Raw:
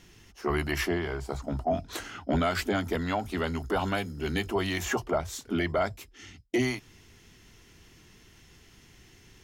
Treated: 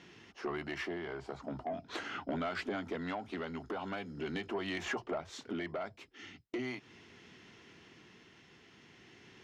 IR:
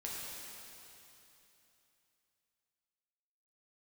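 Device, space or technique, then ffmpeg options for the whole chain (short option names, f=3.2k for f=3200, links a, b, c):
AM radio: -af "highpass=180,lowpass=3.6k,acompressor=threshold=-36dB:ratio=4,asoftclip=type=tanh:threshold=-30dB,tremolo=f=0.41:d=0.29,volume=2.5dB"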